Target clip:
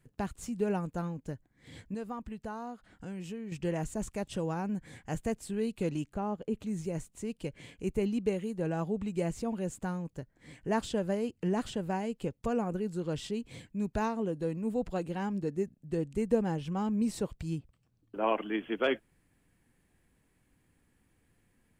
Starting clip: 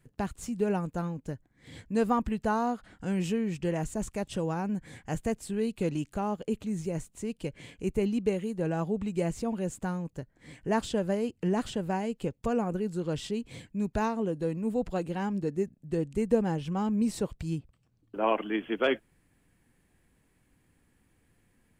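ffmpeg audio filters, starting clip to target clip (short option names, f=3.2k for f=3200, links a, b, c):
-filter_complex "[0:a]asettb=1/sr,asplit=3[a][b][c];[a]atrim=end=1.944[d];[b]atrim=start=1.94:end=3.52,asetpts=PTS-STARTPTS,afade=t=in:d=0.004:c=qsin,afade=t=out:st=1.576:d=0.004:c=qsin,acompressor=threshold=-42dB:ratio=2[e];[c]atrim=start=3.516[f];[d][e]acrossfade=d=0.004:c1=hsin:c2=qsin[g];[g][f]acrossfade=d=0.004:c1=qsin:c2=hsin,asettb=1/sr,asplit=3[h][i][j];[h]atrim=end=6.054[k];[i]atrim=start=6.05:end=6.59,asetpts=PTS-STARTPTS,afade=t=in:d=0.004:c=qsin,afade=t=out:st=0.536:d=0.004:c=qsin,highshelf=f=2.4k:g=-9.5[l];[j]atrim=start=6.586[m];[k][l]acrossfade=d=0.004:c1=hsin:c2=qsin[n];[n][m]acrossfade=d=0.004:c1=qsin:c2=hsin,volume=-2.5dB"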